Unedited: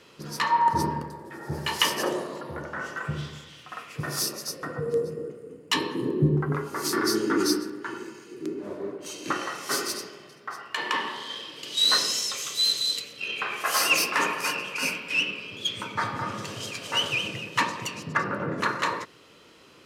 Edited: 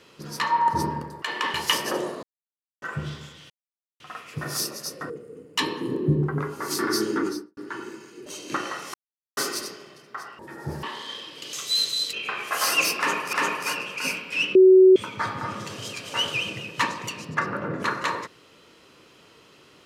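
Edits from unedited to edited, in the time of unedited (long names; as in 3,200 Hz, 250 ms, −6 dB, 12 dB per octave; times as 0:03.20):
0:01.22–0:01.66: swap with 0:10.72–0:11.04
0:02.35–0:02.94: silence
0:03.62: splice in silence 0.50 s
0:04.72–0:05.24: remove
0:07.24–0:07.71: fade out and dull
0:08.40–0:09.02: remove
0:09.70: splice in silence 0.43 s
0:11.74–0:12.41: remove
0:13.01–0:13.26: remove
0:14.11–0:14.46: repeat, 2 plays
0:15.33–0:15.74: beep over 375 Hz −9 dBFS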